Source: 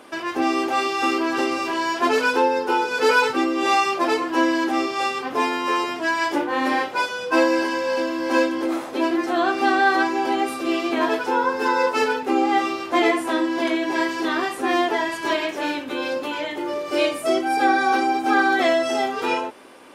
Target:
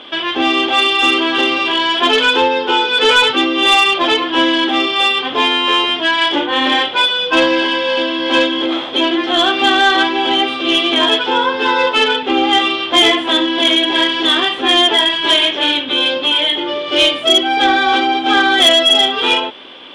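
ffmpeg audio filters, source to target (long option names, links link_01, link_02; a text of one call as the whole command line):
ffmpeg -i in.wav -af "lowpass=frequency=3300:width_type=q:width=14,asoftclip=type=tanh:threshold=-9dB,volume=5.5dB" out.wav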